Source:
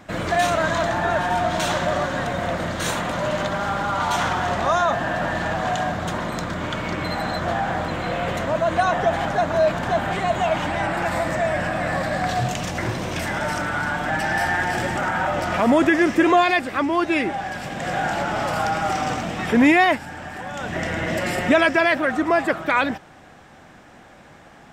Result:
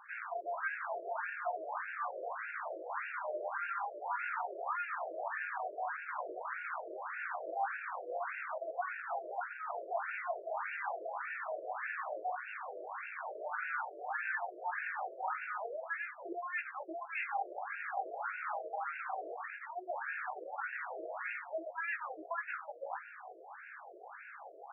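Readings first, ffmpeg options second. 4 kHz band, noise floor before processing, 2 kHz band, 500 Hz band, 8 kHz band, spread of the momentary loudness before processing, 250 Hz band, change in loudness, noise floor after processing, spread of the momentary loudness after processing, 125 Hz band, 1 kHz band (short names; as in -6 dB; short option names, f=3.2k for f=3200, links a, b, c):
under -35 dB, -47 dBFS, -15.5 dB, -19.5 dB, under -40 dB, 9 LU, -35.0 dB, -18.0 dB, -52 dBFS, 6 LU, under -40 dB, -16.0 dB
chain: -af "areverse,acompressor=threshold=-33dB:ratio=10,areverse,aeval=exprs='(tanh(39.8*val(0)+0.75)-tanh(0.75))/39.8':c=same,highpass=360,equalizer=f=590:t=q:w=4:g=-6,equalizer=f=2k:t=q:w=4:g=-3,equalizer=f=3.8k:t=q:w=4:g=3,lowpass=f=5.5k:w=0.5412,lowpass=f=5.5k:w=1.3066,flanger=delay=17.5:depth=2.4:speed=0.43,afftfilt=real='re*between(b*sr/1024,470*pow(2000/470,0.5+0.5*sin(2*PI*1.7*pts/sr))/1.41,470*pow(2000/470,0.5+0.5*sin(2*PI*1.7*pts/sr))*1.41)':imag='im*between(b*sr/1024,470*pow(2000/470,0.5+0.5*sin(2*PI*1.7*pts/sr))/1.41,470*pow(2000/470,0.5+0.5*sin(2*PI*1.7*pts/sr))*1.41)':win_size=1024:overlap=0.75,volume=11dB"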